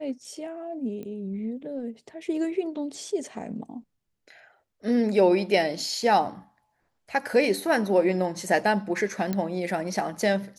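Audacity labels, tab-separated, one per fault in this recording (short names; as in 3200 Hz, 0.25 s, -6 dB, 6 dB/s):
1.030000	1.030000	pop -27 dBFS
9.330000	9.330000	pop -15 dBFS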